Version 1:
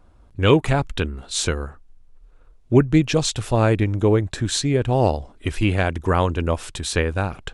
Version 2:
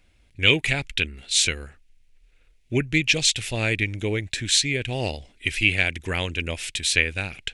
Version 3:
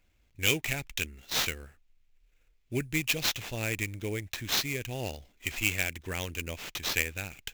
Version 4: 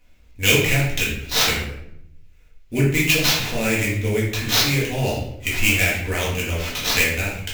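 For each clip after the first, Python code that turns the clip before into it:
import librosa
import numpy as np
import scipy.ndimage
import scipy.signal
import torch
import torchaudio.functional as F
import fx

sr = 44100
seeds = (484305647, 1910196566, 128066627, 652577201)

y1 = fx.high_shelf_res(x, sr, hz=1600.0, db=11.5, q=3.0)
y1 = F.gain(torch.from_numpy(y1), -8.5).numpy()
y2 = fx.sample_hold(y1, sr, seeds[0], rate_hz=9700.0, jitter_pct=20)
y2 = F.gain(torch.from_numpy(y2), -8.5).numpy()
y3 = fx.room_shoebox(y2, sr, seeds[1], volume_m3=170.0, walls='mixed', distance_m=1.9)
y3 = F.gain(torch.from_numpy(y3), 5.0).numpy()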